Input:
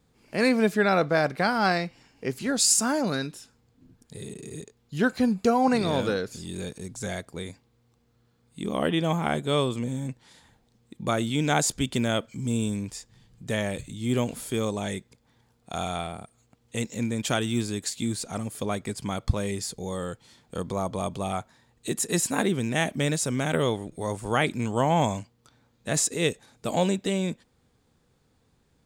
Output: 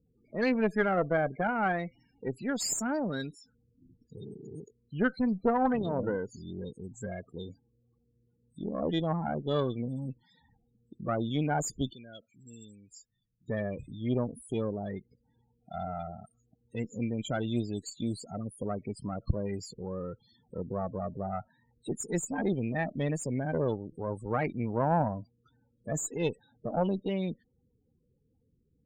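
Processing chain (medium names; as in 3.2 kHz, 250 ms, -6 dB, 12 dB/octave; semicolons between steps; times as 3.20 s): loudest bins only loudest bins 16; 11.93–13.48 s: pre-emphasis filter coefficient 0.9; Chebyshev shaper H 2 -8 dB, 4 -26 dB, 6 -31 dB, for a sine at -9.5 dBFS; trim -4.5 dB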